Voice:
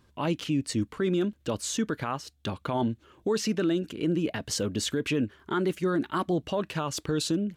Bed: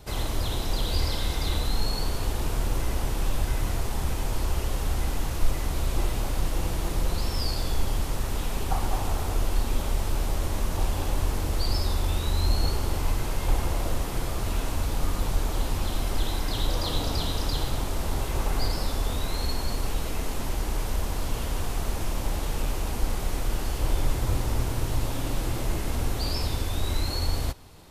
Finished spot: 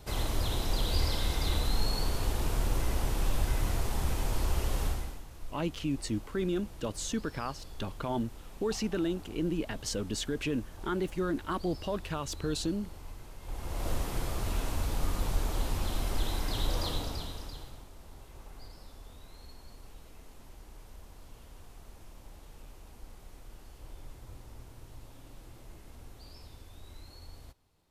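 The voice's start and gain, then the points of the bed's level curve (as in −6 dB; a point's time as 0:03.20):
5.35 s, −5.0 dB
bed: 0:04.86 −3 dB
0:05.25 −19.5 dB
0:13.40 −19.5 dB
0:13.89 −4.5 dB
0:16.84 −4.5 dB
0:17.90 −22.5 dB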